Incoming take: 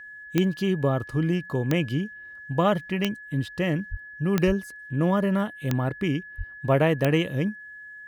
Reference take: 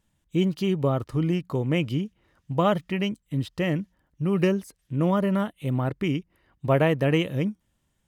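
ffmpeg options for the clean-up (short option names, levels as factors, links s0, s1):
-filter_complex "[0:a]adeclick=t=4,bandreject=f=1700:w=30,asplit=3[s0][s1][s2];[s0]afade=t=out:st=3.9:d=0.02[s3];[s1]highpass=f=140:w=0.5412,highpass=f=140:w=1.3066,afade=t=in:st=3.9:d=0.02,afade=t=out:st=4.02:d=0.02[s4];[s2]afade=t=in:st=4.02:d=0.02[s5];[s3][s4][s5]amix=inputs=3:normalize=0,asplit=3[s6][s7][s8];[s6]afade=t=out:st=4.46:d=0.02[s9];[s7]highpass=f=140:w=0.5412,highpass=f=140:w=1.3066,afade=t=in:st=4.46:d=0.02,afade=t=out:st=4.58:d=0.02[s10];[s8]afade=t=in:st=4.58:d=0.02[s11];[s9][s10][s11]amix=inputs=3:normalize=0,asplit=3[s12][s13][s14];[s12]afade=t=out:st=6.37:d=0.02[s15];[s13]highpass=f=140:w=0.5412,highpass=f=140:w=1.3066,afade=t=in:st=6.37:d=0.02,afade=t=out:st=6.49:d=0.02[s16];[s14]afade=t=in:st=6.49:d=0.02[s17];[s15][s16][s17]amix=inputs=3:normalize=0"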